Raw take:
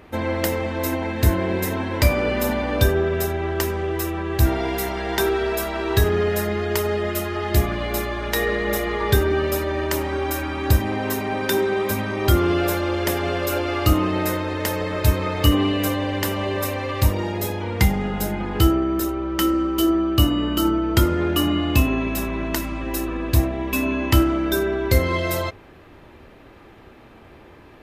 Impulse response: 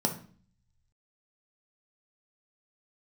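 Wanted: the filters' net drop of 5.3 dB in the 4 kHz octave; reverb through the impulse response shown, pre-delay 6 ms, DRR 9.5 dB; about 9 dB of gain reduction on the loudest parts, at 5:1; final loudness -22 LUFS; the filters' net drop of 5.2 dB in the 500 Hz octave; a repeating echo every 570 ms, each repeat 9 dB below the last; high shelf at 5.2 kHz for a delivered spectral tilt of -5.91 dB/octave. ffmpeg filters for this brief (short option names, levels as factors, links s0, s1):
-filter_complex "[0:a]equalizer=f=500:t=o:g=-7.5,equalizer=f=4000:t=o:g=-5,highshelf=f=5200:g=-6.5,acompressor=threshold=0.0794:ratio=5,aecho=1:1:570|1140|1710|2280:0.355|0.124|0.0435|0.0152,asplit=2[s0][s1];[1:a]atrim=start_sample=2205,adelay=6[s2];[s1][s2]afir=irnorm=-1:irlink=0,volume=0.141[s3];[s0][s3]amix=inputs=2:normalize=0,volume=1.5"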